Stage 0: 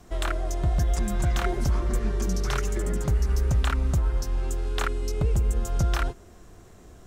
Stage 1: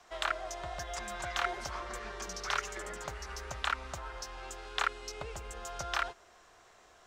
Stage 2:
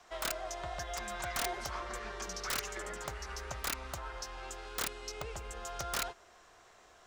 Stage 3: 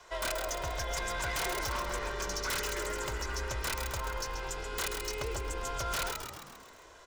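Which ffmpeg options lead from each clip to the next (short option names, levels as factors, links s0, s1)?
-filter_complex "[0:a]acrossover=split=600 6400:gain=0.0631 1 0.2[s0][s1][s2];[s0][s1][s2]amix=inputs=3:normalize=0"
-af "aeval=exprs='(mod(21.1*val(0)+1,2)-1)/21.1':c=same"
-filter_complex "[0:a]aecho=1:1:2:0.59,asplit=7[s0][s1][s2][s3][s4][s5][s6];[s1]adelay=133,afreqshift=-61,volume=0.335[s7];[s2]adelay=266,afreqshift=-122,volume=0.184[s8];[s3]adelay=399,afreqshift=-183,volume=0.101[s9];[s4]adelay=532,afreqshift=-244,volume=0.0556[s10];[s5]adelay=665,afreqshift=-305,volume=0.0305[s11];[s6]adelay=798,afreqshift=-366,volume=0.0168[s12];[s0][s7][s8][s9][s10][s11][s12]amix=inputs=7:normalize=0,aeval=exprs='0.0266*(abs(mod(val(0)/0.0266+3,4)-2)-1)':c=same,volume=1.58"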